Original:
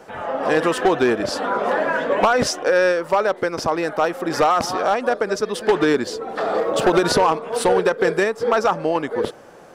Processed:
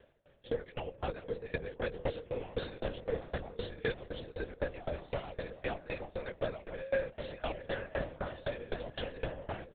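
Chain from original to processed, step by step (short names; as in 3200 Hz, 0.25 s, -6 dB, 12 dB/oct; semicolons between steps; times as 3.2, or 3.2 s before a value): whole clip reversed; gate -32 dBFS, range -13 dB; bell 650 Hz -8 dB 0.22 oct; compressor 6:1, threshold -28 dBFS, peak gain reduction 15 dB; low shelf 340 Hz -8 dB; fixed phaser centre 300 Hz, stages 6; doubler 13 ms -4 dB; repeats that get brighter 0.251 s, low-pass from 200 Hz, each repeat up 1 oct, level -3 dB; LPC vocoder at 8 kHz whisper; dB-ramp tremolo decaying 3.9 Hz, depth 23 dB; gain +2.5 dB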